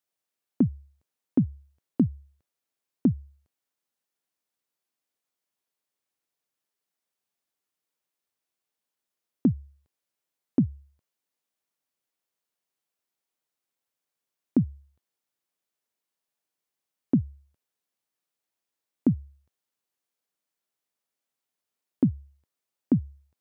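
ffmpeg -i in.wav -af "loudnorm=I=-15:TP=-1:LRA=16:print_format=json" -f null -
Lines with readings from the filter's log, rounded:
"input_i" : "-28.3",
"input_tp" : "-11.4",
"input_lra" : "4.7",
"input_thresh" : "-39.8",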